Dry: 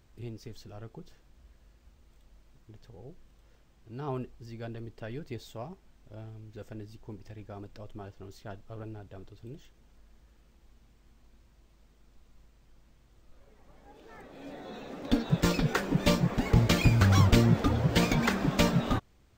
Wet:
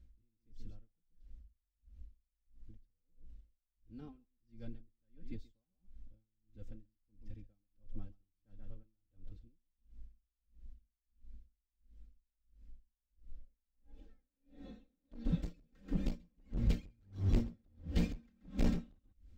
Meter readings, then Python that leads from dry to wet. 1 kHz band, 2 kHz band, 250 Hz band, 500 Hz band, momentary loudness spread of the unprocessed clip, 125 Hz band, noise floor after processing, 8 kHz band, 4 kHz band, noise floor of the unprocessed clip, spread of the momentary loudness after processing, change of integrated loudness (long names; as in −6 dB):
−25.0 dB, −23.5 dB, −12.5 dB, −18.0 dB, 23 LU, −14.0 dB, below −85 dBFS, below −20 dB, −21.5 dB, −62 dBFS, 22 LU, −13.0 dB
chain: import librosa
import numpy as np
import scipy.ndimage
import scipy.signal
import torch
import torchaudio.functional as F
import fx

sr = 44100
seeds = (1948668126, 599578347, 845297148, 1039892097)

y = fx.tone_stack(x, sr, knobs='10-0-1')
y = y + 1.0 * np.pad(y, (int(3.8 * sr / 1000.0), 0))[:len(y)]
y = fx.rider(y, sr, range_db=10, speed_s=2.0)
y = fx.high_shelf(y, sr, hz=4700.0, db=-10.5)
y = y + 10.0 ** (-9.0 / 20.0) * np.pad(y, (int(133 * sr / 1000.0), 0))[:len(y)]
y = np.clip(y, -10.0 ** (-32.5 / 20.0), 10.0 ** (-32.5 / 20.0))
y = y * 10.0 ** (-40 * (0.5 - 0.5 * np.cos(2.0 * np.pi * 1.5 * np.arange(len(y)) / sr)) / 20.0)
y = y * librosa.db_to_amplitude(8.5)